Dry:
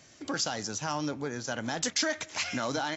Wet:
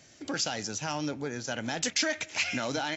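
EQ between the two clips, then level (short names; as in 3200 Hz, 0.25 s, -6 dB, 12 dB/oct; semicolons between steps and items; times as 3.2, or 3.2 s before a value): bell 1100 Hz -6 dB 0.37 oct; dynamic EQ 2500 Hz, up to +7 dB, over -52 dBFS, Q 3; 0.0 dB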